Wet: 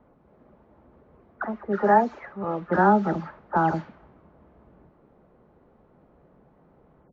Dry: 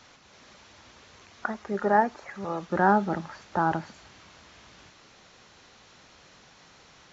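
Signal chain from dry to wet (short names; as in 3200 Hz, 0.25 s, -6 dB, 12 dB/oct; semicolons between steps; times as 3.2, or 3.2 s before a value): spectral delay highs early, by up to 0.216 s; high shelf 3300 Hz -10 dB; low-pass opened by the level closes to 570 Hz, open at -21.5 dBFS; gain +4 dB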